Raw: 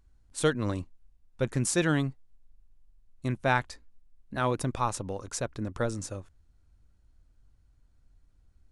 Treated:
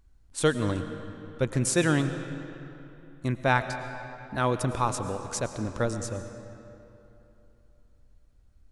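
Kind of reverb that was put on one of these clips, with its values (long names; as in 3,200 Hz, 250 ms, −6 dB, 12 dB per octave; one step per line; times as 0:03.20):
comb and all-pass reverb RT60 3.1 s, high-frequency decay 0.7×, pre-delay 70 ms, DRR 9 dB
level +2 dB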